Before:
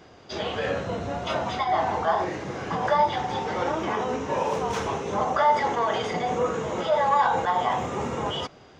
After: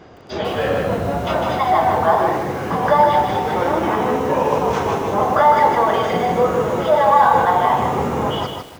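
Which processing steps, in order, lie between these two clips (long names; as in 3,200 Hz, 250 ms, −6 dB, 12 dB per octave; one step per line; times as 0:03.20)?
high-shelf EQ 2,600 Hz −9.5 dB
feedback echo at a low word length 153 ms, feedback 35%, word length 8 bits, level −4 dB
level +8 dB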